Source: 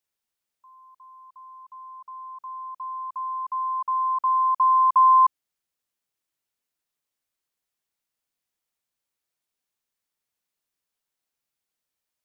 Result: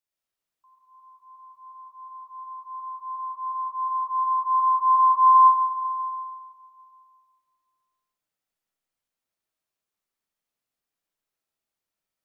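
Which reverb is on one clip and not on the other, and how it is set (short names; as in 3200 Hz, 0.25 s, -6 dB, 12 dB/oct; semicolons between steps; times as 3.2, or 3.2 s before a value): digital reverb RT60 2.5 s, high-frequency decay 0.3×, pre-delay 65 ms, DRR -5.5 dB; gain -7 dB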